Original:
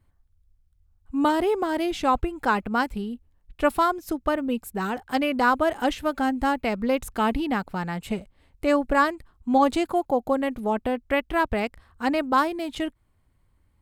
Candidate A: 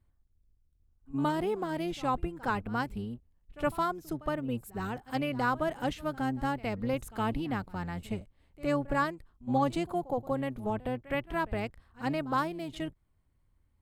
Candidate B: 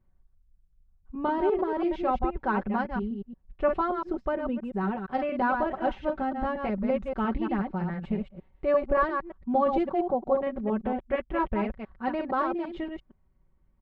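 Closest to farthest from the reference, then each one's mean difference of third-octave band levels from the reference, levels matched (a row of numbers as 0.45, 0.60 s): A, B; 4.5, 9.0 dB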